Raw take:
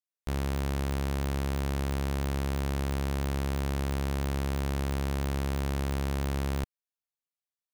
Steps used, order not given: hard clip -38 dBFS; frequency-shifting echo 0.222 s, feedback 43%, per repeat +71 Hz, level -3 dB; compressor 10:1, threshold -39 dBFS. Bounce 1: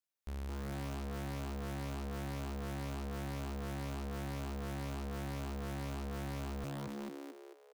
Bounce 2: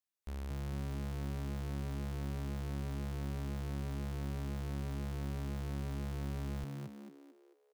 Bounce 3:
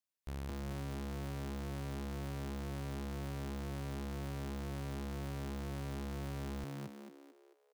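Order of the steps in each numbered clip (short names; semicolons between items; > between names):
frequency-shifting echo > hard clip > compressor; hard clip > compressor > frequency-shifting echo; compressor > frequency-shifting echo > hard clip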